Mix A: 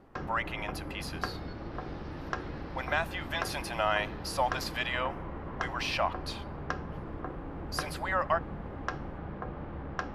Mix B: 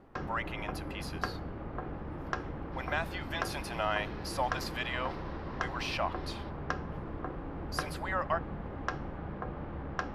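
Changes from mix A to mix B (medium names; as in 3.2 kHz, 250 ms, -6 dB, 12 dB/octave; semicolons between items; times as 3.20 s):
speech -3.5 dB; second sound: entry +1.65 s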